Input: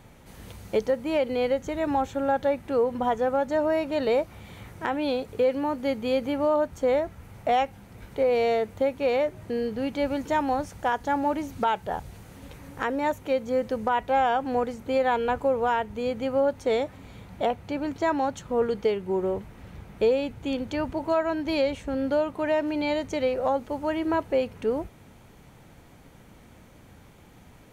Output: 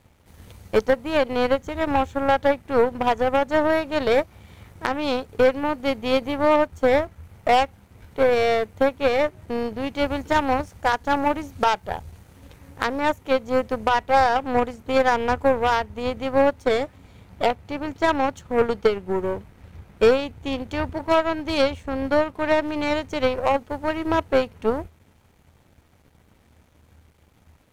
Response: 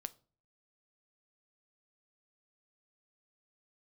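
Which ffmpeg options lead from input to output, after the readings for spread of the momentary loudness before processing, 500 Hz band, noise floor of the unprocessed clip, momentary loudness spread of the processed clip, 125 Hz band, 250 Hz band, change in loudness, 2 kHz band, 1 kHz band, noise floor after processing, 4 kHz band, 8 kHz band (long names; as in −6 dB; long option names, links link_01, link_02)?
8 LU, +3.5 dB, −52 dBFS, 8 LU, +5.0 dB, +2.5 dB, +4.0 dB, +7.5 dB, +4.5 dB, −58 dBFS, +7.0 dB, can't be measured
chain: -af "aeval=exprs='sgn(val(0))*max(abs(val(0))-0.00188,0)':channel_layout=same,aeval=exprs='0.178*(cos(1*acos(clip(val(0)/0.178,-1,1)))-cos(1*PI/2))+0.0316*(cos(3*acos(clip(val(0)/0.178,-1,1)))-cos(3*PI/2))+0.0126*(cos(4*acos(clip(val(0)/0.178,-1,1)))-cos(4*PI/2))+0.00251*(cos(7*acos(clip(val(0)/0.178,-1,1)))-cos(7*PI/2))':channel_layout=same,equalizer=frequency=80:width_type=o:width=0.31:gain=13.5,volume=6.5dB"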